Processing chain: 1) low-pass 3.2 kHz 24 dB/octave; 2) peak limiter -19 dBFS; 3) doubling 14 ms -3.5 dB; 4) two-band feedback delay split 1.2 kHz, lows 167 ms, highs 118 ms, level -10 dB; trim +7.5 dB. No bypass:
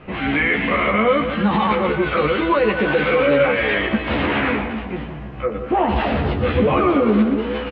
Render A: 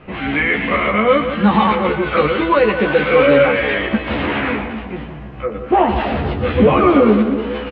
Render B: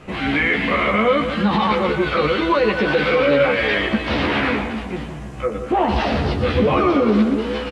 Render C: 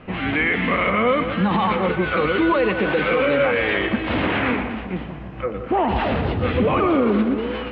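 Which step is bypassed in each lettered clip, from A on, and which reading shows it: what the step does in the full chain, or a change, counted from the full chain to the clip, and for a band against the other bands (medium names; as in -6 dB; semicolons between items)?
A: 2, momentary loudness spread change +4 LU; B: 1, 4 kHz band +3.0 dB; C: 3, loudness change -2.0 LU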